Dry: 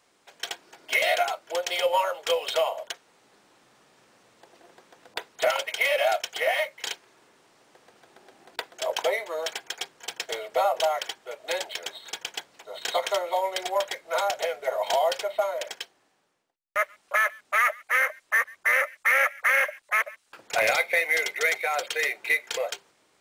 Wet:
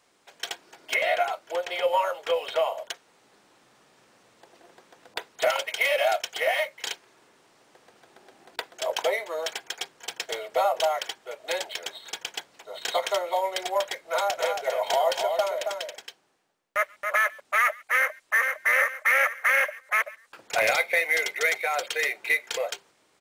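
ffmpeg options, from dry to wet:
ffmpeg -i in.wav -filter_complex "[0:a]asettb=1/sr,asplit=3[link_01][link_02][link_03];[link_01]atrim=end=0.944[link_04];[link_02]atrim=start=0.94:end=2.72,asetpts=PTS-STARTPTS,afade=type=in:duration=0.004:curve=qsin,afade=type=out:start_time=1.776:duration=0.004:curve=qsin,acrossover=split=2800[link_05][link_06];[link_06]acompressor=threshold=-43dB:ratio=4:attack=1:release=60[link_07];[link_05][link_07]amix=inputs=2:normalize=0[link_08];[link_03]atrim=start=2.716[link_09];[link_04][link_08]acrossfade=duration=0.004:curve1=hsin:curve2=qsin[link_10];[link_10][link_09]acrossfade=duration=0.004:curve1=qsin:curve2=hsin,asettb=1/sr,asplit=3[link_11][link_12][link_13];[link_11]atrim=end=14.104[link_14];[link_12]atrim=start=14.1:end=17.4,asetpts=PTS-STARTPTS,afade=type=in:duration=0.004:curve=qsin,afade=type=out:start_time=3.296:duration=0.004:curve=qsin,aecho=1:1:274:0.531,atrim=end_sample=145530[link_15];[link_13]atrim=start=17.396[link_16];[link_14][link_15]acrossfade=duration=0.004:curve1=hsin:curve2=qsin[link_17];[link_17][link_16]acrossfade=duration=0.004:curve1=qsin:curve2=hsin,asplit=2[link_18][link_19];[link_19]afade=type=in:start_time=17.96:duration=0.01,afade=type=out:start_time=18.42:duration=0.01,aecho=0:1:460|920|1380|1840:0.630957|0.189287|0.0567862|0.0170358[link_20];[link_18][link_20]amix=inputs=2:normalize=0" out.wav

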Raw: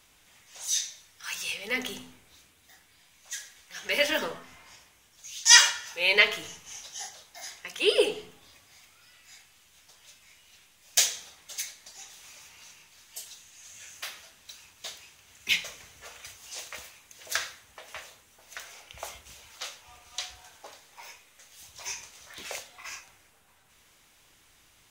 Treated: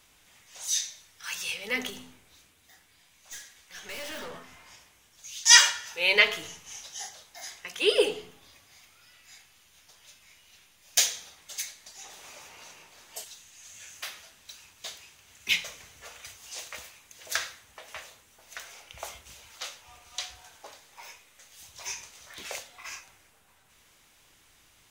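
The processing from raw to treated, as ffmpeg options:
ffmpeg -i in.wav -filter_complex "[0:a]asettb=1/sr,asplit=3[link_01][link_02][link_03];[link_01]atrim=end=1.904[link_04];[link_02]atrim=start=1.9:end=4.34,asetpts=PTS-STARTPTS,afade=type=in:duration=0.004:curve=qsin,afade=type=out:start_time=2.436:duration=0.004:curve=qsin,aeval=exprs='(tanh(70.8*val(0)+0.35)-tanh(0.35))/70.8':channel_layout=same[link_05];[link_03]atrim=start=4.336[link_06];[link_04][link_05]acrossfade=duration=0.004:curve1=hsin:curve2=qsin[link_07];[link_07][link_06]acrossfade=duration=0.004:curve1=qsin:curve2=hsin,asettb=1/sr,asplit=3[link_08][link_09][link_10];[link_08]atrim=end=8.174[link_11];[link_09]atrim=start=8.17:end=11.4,asetpts=PTS-STARTPTS,afade=type=in:duration=0.004:curve=qsin,afade=type=out:start_time=3.226:duration=0.004:curve=qsin,bandreject=frequency=7900:width=12[link_12];[link_10]atrim=start=11.396[link_13];[link_11][link_12]acrossfade=duration=0.004:curve1=hsin:curve2=qsin[link_14];[link_14][link_13]acrossfade=duration=0.004:curve1=qsin:curve2=hsin,asettb=1/sr,asplit=3[link_15][link_16][link_17];[link_15]atrim=end=12.044[link_18];[link_16]atrim=start=12.04:end=13.24,asetpts=PTS-STARTPTS,afade=type=in:duration=0.004:curve=qsin,afade=type=out:start_time=1.196:duration=0.004:curve=qsin,equalizer=frequency=560:width_type=o:width=2.6:gain=11.5[link_19];[link_17]atrim=start=13.236[link_20];[link_18][link_19]acrossfade=duration=0.004:curve1=hsin:curve2=qsin[link_21];[link_21][link_20]acrossfade=duration=0.004:curve1=qsin:curve2=hsin" out.wav

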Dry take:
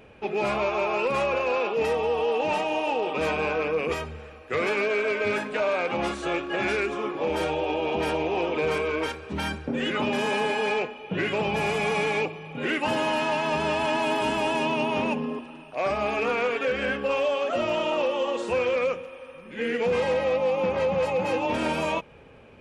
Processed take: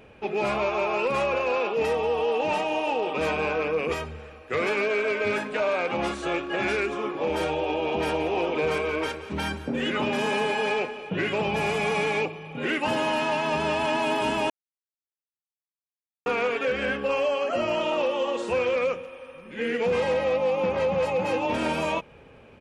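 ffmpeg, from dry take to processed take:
ffmpeg -i in.wav -filter_complex "[0:a]asplit=3[link_01][link_02][link_03];[link_01]afade=type=out:start_time=8.11:duration=0.02[link_04];[link_02]aecho=1:1:176|352|528|704|880:0.168|0.089|0.0472|0.025|0.0132,afade=type=in:start_time=8.11:duration=0.02,afade=type=out:start_time=11.09:duration=0.02[link_05];[link_03]afade=type=in:start_time=11.09:duration=0.02[link_06];[link_04][link_05][link_06]amix=inputs=3:normalize=0,asettb=1/sr,asplit=3[link_07][link_08][link_09];[link_07]atrim=end=17.114[link_10];[link_08]atrim=start=17.11:end=17.81,asetpts=PTS-STARTPTS,afade=type=in:duration=0.004:curve=qsin,afade=type=out:start_time=0.696:duration=0.004:curve=qsin,asuperstop=centerf=3600:order=20:qfactor=6.8[link_11];[link_09]atrim=start=17.806[link_12];[link_10][link_11]acrossfade=duration=0.004:curve1=hsin:curve2=qsin[link_13];[link_13][link_12]acrossfade=duration=0.004:curve1=qsin:curve2=hsin,asplit=3[link_14][link_15][link_16];[link_14]atrim=end=14.5,asetpts=PTS-STARTPTS,afade=type=out:start_time=14.496:duration=0.004:curve=hsin[link_17];[link_15]atrim=start=14.5:end=16.26,asetpts=PTS-STARTPTS,volume=0[link_18];[link_16]atrim=start=16.26,asetpts=PTS-STARTPTS,afade=type=in:duration=0.004:curve=hsin[link_19];[link_17][link_18][link_19]concat=n=3:v=0:a=1" out.wav

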